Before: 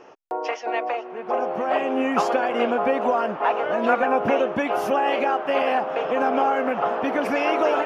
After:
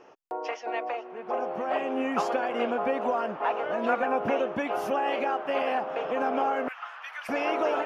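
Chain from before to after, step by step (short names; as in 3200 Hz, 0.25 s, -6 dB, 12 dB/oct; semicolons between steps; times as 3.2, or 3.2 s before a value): 6.68–7.29 HPF 1300 Hz 24 dB/oct; gain -6 dB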